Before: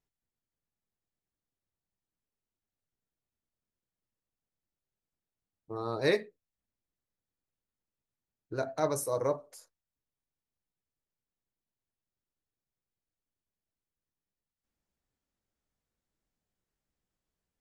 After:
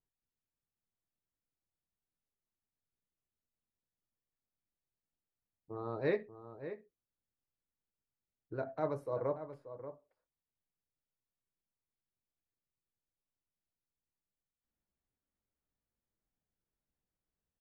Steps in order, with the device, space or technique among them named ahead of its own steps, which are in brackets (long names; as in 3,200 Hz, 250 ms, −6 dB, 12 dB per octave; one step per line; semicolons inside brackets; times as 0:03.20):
shout across a valley (high-frequency loss of the air 480 metres; slap from a distant wall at 100 metres, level −11 dB)
level −4 dB